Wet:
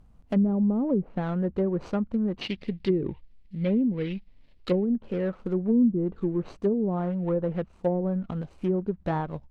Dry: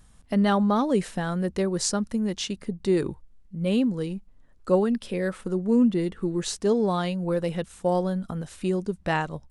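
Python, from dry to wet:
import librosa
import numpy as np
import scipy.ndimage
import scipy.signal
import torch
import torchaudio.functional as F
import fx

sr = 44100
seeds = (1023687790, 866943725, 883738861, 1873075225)

y = scipy.ndimage.median_filter(x, 25, mode='constant')
y = fx.env_lowpass_down(y, sr, base_hz=340.0, full_db=-18.5)
y = fx.band_shelf(y, sr, hz=3100.0, db=15.0, octaves=1.7, at=(2.41, 4.85))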